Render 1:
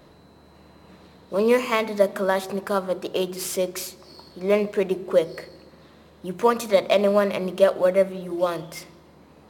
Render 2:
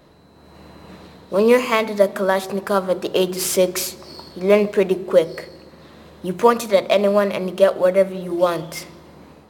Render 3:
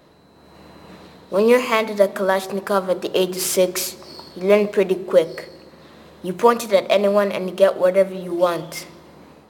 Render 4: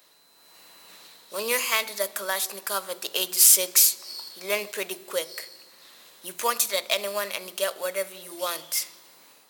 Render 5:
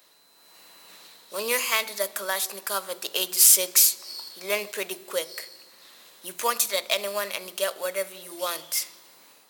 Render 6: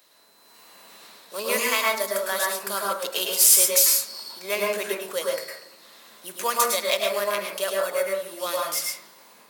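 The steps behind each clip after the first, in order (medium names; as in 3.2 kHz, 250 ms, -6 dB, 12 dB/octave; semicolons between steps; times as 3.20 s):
level rider gain up to 8.5 dB
bass shelf 110 Hz -7 dB
differentiator; trim +7.5 dB
high-pass 110 Hz
reverberation RT60 0.55 s, pre-delay 97 ms, DRR -2.5 dB; trim -1 dB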